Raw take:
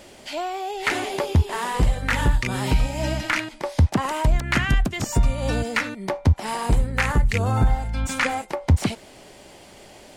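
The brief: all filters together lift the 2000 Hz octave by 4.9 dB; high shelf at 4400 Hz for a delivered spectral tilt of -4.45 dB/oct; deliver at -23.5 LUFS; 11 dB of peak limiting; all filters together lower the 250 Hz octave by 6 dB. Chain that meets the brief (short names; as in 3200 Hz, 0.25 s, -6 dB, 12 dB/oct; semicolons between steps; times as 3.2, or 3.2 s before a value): bell 250 Hz -8.5 dB; bell 2000 Hz +4.5 dB; high shelf 4400 Hz +7.5 dB; gain +3 dB; limiter -13 dBFS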